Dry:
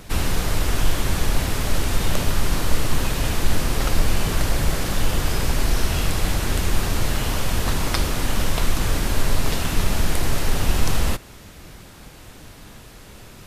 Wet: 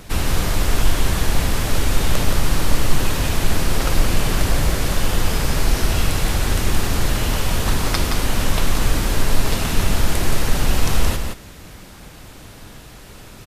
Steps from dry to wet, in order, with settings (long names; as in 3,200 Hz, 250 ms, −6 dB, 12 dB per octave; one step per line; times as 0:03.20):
single-tap delay 172 ms −5.5 dB
level +1.5 dB